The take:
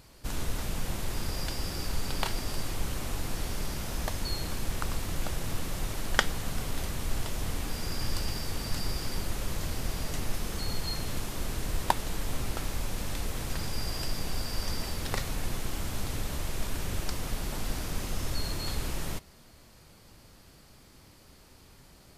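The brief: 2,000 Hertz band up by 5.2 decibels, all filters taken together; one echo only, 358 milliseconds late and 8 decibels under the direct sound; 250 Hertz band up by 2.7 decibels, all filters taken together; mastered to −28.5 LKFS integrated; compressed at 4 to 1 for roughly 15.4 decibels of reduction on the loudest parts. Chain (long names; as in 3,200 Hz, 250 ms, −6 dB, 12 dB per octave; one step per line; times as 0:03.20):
parametric band 250 Hz +3.5 dB
parametric band 2,000 Hz +6.5 dB
downward compressor 4 to 1, threshold −35 dBFS
single-tap delay 358 ms −8 dB
level +12 dB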